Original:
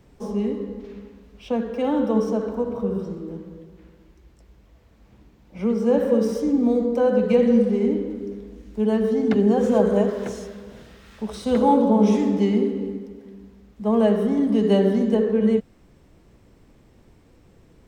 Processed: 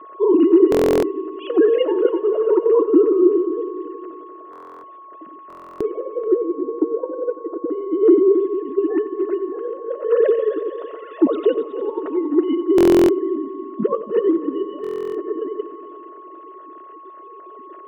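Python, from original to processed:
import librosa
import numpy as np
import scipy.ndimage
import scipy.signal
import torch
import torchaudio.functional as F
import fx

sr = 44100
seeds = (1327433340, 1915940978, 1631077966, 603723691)

y = fx.sine_speech(x, sr)
y = fx.peak_eq(y, sr, hz=630.0, db=8.5, octaves=0.74)
y = fx.notch(y, sr, hz=500.0, q=12.0)
y = fx.over_compress(y, sr, threshold_db=-27.0, ratio=-0.5)
y = fx.filter_lfo_lowpass(y, sr, shape='saw_down', hz=1.8, low_hz=450.0, high_hz=1500.0, q=0.9, at=(5.68, 7.7))
y = y + 10.0 ** (-45.0 / 20.0) * np.sin(2.0 * np.pi * 1100.0 * np.arange(len(y)) / sr)
y = fx.cabinet(y, sr, low_hz=200.0, low_slope=12, high_hz=3000.0, hz=(220.0, 330.0, 560.0, 830.0, 2200.0), db=(-9, 5, -4, -9, -10))
y = fx.notch_comb(y, sr, f0_hz=790.0)
y = fx.echo_heads(y, sr, ms=91, heads='first and third', feedback_pct=62, wet_db=-16.0)
y = fx.buffer_glitch(y, sr, at_s=(0.7, 4.51, 5.48, 12.76, 14.82), block=1024, repeats=13)
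y = y * librosa.db_to_amplitude(9.0)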